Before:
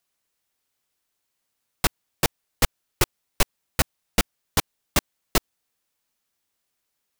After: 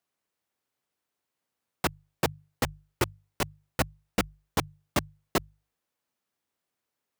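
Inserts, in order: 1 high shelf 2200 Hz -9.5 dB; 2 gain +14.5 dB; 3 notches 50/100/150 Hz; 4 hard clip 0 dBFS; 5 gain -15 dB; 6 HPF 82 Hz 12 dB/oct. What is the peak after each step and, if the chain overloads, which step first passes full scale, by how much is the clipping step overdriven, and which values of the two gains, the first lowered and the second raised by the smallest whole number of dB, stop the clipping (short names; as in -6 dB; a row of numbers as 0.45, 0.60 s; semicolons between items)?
-7.0, +7.5, +7.0, 0.0, -15.0, -11.0 dBFS; step 2, 7.0 dB; step 2 +7.5 dB, step 5 -8 dB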